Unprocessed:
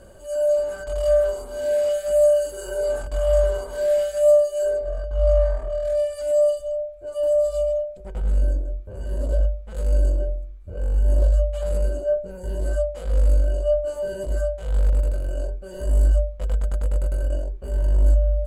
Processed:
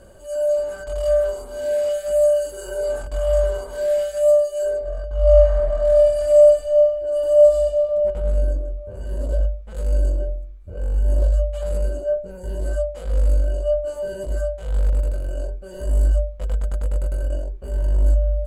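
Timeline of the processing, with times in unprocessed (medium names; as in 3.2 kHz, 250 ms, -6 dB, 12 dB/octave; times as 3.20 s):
5.20–7.63 s: reverb throw, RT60 2.6 s, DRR -2 dB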